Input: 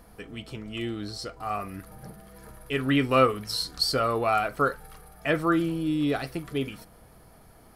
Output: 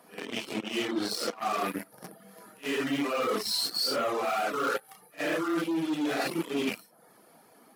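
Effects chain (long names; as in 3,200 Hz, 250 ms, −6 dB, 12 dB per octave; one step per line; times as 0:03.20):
random phases in long frames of 200 ms
in parallel at −6 dB: fuzz pedal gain 33 dB, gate −37 dBFS
on the sum: high-pass filter 200 Hz 24 dB per octave
reversed playback
downward compressor 6 to 1, threshold −26 dBFS, peak gain reduction 14 dB
reversed playback
reverb reduction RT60 0.51 s
echo ahead of the sound 66 ms −23 dB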